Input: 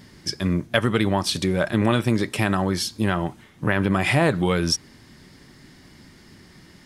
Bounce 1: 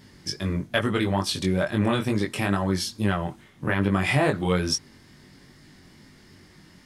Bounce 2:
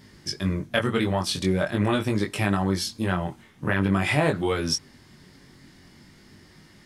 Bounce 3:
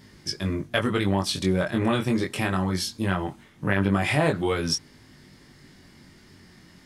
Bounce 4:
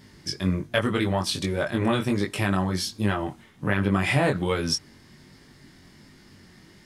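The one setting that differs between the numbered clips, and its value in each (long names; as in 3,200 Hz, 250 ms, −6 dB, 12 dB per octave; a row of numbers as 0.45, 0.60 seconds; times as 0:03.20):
chorus effect, speed: 2.3, 0.45, 0.22, 1.3 Hertz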